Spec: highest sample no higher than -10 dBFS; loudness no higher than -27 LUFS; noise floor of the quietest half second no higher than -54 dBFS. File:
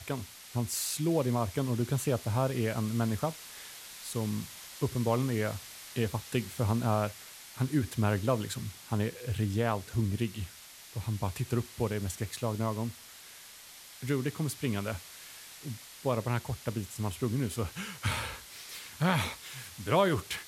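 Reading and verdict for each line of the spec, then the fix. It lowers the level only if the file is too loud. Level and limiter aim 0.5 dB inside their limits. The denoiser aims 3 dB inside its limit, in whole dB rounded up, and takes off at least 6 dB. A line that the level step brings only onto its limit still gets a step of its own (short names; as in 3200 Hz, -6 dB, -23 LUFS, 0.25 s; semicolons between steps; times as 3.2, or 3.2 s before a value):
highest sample -12.5 dBFS: OK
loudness -32.5 LUFS: OK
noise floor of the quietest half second -51 dBFS: fail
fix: denoiser 6 dB, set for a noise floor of -51 dBFS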